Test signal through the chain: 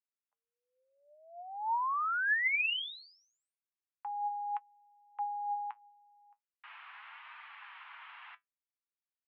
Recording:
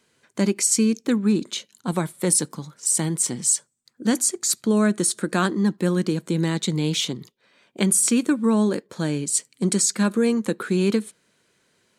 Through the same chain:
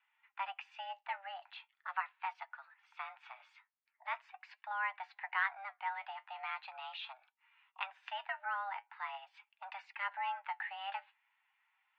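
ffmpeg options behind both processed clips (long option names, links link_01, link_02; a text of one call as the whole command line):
ffmpeg -i in.wav -af "flanger=delay=3.6:depth=6.3:regen=60:speed=0.41:shape=sinusoidal,highpass=frequency=540:width_type=q:width=0.5412,highpass=frequency=540:width_type=q:width=1.307,lowpass=frequency=2500:width_type=q:width=0.5176,lowpass=frequency=2500:width_type=q:width=0.7071,lowpass=frequency=2500:width_type=q:width=1.932,afreqshift=390,volume=-4dB" out.wav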